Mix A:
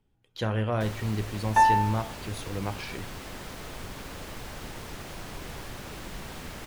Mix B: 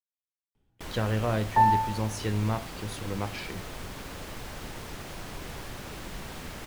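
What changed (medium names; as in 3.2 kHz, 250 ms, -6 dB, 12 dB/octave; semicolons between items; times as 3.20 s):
speech: entry +0.55 s; second sound: add low-pass 1.2 kHz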